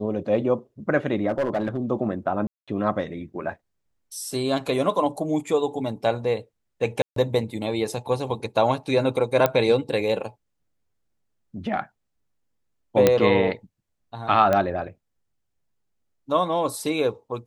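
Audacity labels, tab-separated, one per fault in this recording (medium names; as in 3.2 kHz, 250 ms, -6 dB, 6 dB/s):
1.280000	1.780000	clipped -19 dBFS
2.470000	2.680000	dropout 206 ms
7.020000	7.160000	dropout 143 ms
9.460000	9.460000	pop -6 dBFS
13.070000	13.070000	pop -3 dBFS
14.530000	14.530000	pop -10 dBFS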